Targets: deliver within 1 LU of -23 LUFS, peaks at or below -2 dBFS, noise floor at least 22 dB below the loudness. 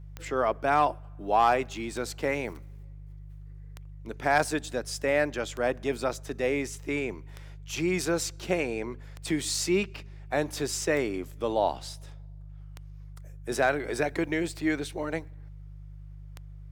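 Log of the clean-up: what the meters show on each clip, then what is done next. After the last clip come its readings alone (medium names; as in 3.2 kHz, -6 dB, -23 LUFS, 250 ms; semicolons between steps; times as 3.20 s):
clicks found 10; hum 50 Hz; highest harmonic 150 Hz; hum level -41 dBFS; loudness -29.0 LUFS; peak level -12.5 dBFS; loudness target -23.0 LUFS
-> de-click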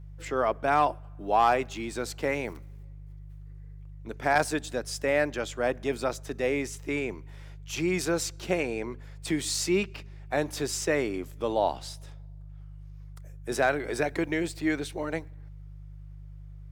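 clicks found 0; hum 50 Hz; highest harmonic 150 Hz; hum level -41 dBFS
-> de-hum 50 Hz, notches 3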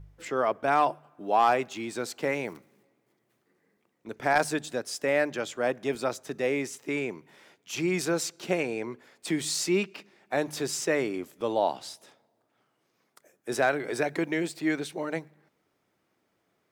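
hum not found; loudness -29.0 LUFS; peak level -13.0 dBFS; loudness target -23.0 LUFS
-> trim +6 dB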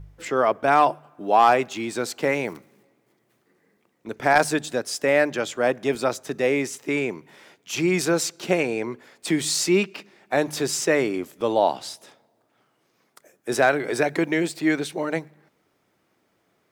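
loudness -23.0 LUFS; peak level -7.0 dBFS; noise floor -69 dBFS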